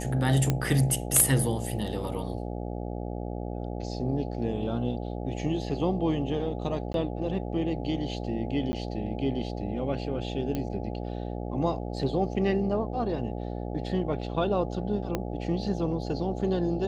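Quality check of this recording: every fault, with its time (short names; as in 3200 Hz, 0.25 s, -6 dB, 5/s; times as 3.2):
buzz 60 Hz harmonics 14 -34 dBFS
0.5 pop -11 dBFS
6.93–6.94 gap 12 ms
8.72–8.73 gap 10 ms
10.55 pop -18 dBFS
15.15 pop -14 dBFS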